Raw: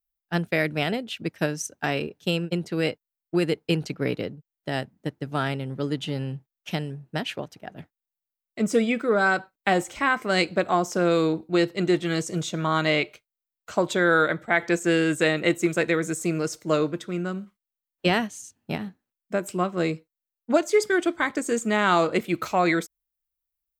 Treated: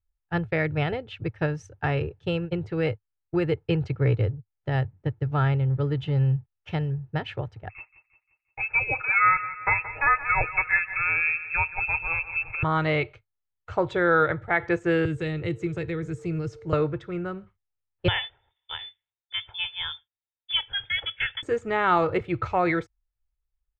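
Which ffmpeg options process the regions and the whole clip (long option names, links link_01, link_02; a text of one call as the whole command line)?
ffmpeg -i in.wav -filter_complex "[0:a]asettb=1/sr,asplit=3[link_01][link_02][link_03];[link_01]atrim=end=7.694[link_04];[link_02]atrim=start=7.69:end=12.63,asetpts=PTS-STARTPTS,afade=type=in:duration=0.004:curve=qsin,afade=type=out:start_time=4.936:duration=0.004:curve=qsin,lowpass=frequency=2400:width_type=q:width=0.5098,lowpass=frequency=2400:width_type=q:width=0.6013,lowpass=frequency=2400:width_type=q:width=0.9,lowpass=frequency=2400:width_type=q:width=2.563,afreqshift=-2800,aecho=1:1:6.4:0.42,atrim=end_sample=217854,aecho=1:1:175|350|525|700|875:0.2|0.0978|0.0479|0.0235|0.0115,atrim=end_sample=217854[link_05];[link_03]atrim=start=12.626[link_06];[link_04][link_05]acrossfade=duration=0.004:curve1=hsin:curve2=qsin[link_07];[link_07][link_06]acrossfade=duration=0.004:curve1=qsin:curve2=hsin,asettb=1/sr,asplit=3[link_08][link_09][link_10];[link_08]atrim=end=15.054[link_11];[link_09]atrim=start=15.05:end=16.73,asetpts=PTS-STARTPTS,afade=type=in:duration=0.004:curve=qsin,afade=type=out:start_time=1.676:duration=0.004:curve=qsin,aeval=exprs='val(0)+0.00631*sin(2*PI*450*n/s)':channel_layout=same,acrossover=split=330|3000[link_12][link_13][link_14];[link_13]acompressor=threshold=-42dB:ratio=2.5:attack=3.2:release=140:knee=2.83:detection=peak[link_15];[link_12][link_15][link_14]amix=inputs=3:normalize=0[link_16];[link_10]atrim=start=16.726[link_17];[link_11][link_16]acrossfade=duration=0.004:curve1=hsin:curve2=qsin[link_18];[link_18][link_17]acrossfade=duration=0.004:curve1=qsin:curve2=hsin,asettb=1/sr,asplit=3[link_19][link_20][link_21];[link_19]atrim=end=18.084[link_22];[link_20]atrim=start=18.08:end=21.43,asetpts=PTS-STARTPTS,afade=type=in:duration=0.004:curve=qsin,afade=type=out:start_time=3.346:duration=0.004:curve=qsin,bandreject=frequency=2500:width=12,lowpass=frequency=3100:width_type=q:width=0.5098,lowpass=frequency=3100:width_type=q:width=0.6013,lowpass=frequency=3100:width_type=q:width=0.9,lowpass=frequency=3100:width_type=q:width=2.563,afreqshift=-3700[link_23];[link_21]atrim=start=21.426[link_24];[link_22][link_23]acrossfade=duration=0.004:curve1=hsin:curve2=qsin[link_25];[link_25][link_24]acrossfade=duration=0.004:curve1=qsin:curve2=hsin,lowpass=2100,lowshelf=frequency=150:width_type=q:width=3:gain=12.5,aecho=1:1:2.3:0.33" out.wav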